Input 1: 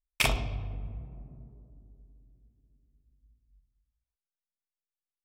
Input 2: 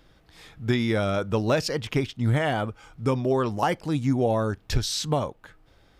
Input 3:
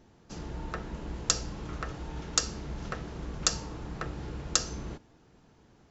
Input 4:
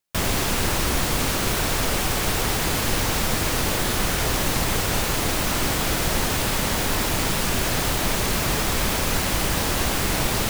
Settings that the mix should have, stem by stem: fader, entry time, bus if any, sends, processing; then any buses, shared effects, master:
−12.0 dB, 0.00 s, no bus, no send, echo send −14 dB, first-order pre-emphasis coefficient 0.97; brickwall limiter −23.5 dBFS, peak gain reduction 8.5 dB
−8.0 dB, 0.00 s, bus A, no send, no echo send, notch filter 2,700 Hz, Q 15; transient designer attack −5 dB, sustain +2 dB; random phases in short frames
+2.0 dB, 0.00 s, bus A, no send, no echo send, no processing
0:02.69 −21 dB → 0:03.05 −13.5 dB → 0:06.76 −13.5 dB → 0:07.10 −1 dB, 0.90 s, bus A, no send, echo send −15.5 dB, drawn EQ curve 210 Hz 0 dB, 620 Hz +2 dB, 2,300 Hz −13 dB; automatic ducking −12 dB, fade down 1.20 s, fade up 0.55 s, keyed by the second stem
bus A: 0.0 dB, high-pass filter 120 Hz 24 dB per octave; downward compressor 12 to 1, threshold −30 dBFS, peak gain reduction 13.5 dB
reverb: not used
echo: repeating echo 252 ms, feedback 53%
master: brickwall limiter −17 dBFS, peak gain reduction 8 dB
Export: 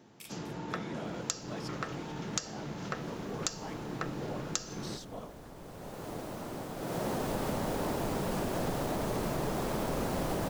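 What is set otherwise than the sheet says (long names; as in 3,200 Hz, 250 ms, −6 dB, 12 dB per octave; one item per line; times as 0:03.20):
stem 2 −8.0 dB → −18.5 dB
master: missing brickwall limiter −17 dBFS, peak gain reduction 8 dB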